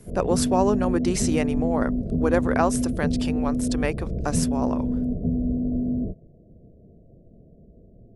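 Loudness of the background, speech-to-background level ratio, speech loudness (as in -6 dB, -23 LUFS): -26.0 LUFS, -0.5 dB, -26.5 LUFS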